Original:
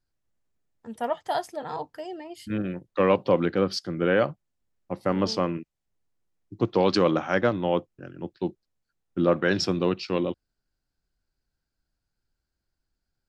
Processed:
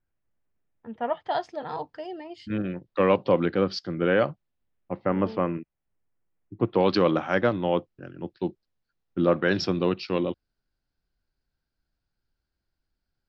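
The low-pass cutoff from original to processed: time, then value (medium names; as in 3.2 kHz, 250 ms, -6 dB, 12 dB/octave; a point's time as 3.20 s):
low-pass 24 dB/octave
1.01 s 2.8 kHz
1.46 s 5 kHz
4.30 s 5 kHz
5.15 s 2.5 kHz
6.60 s 2.5 kHz
7.03 s 5.2 kHz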